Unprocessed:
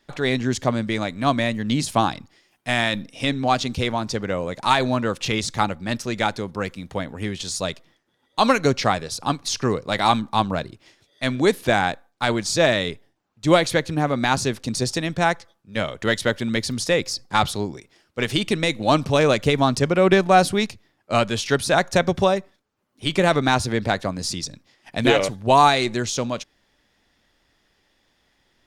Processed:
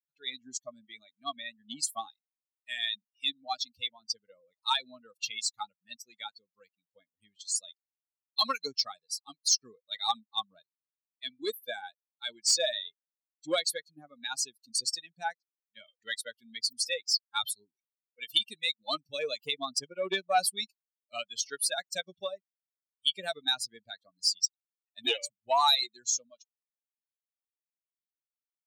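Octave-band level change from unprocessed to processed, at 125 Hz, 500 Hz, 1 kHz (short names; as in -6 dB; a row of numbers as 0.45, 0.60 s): under -35 dB, -17.5 dB, -14.0 dB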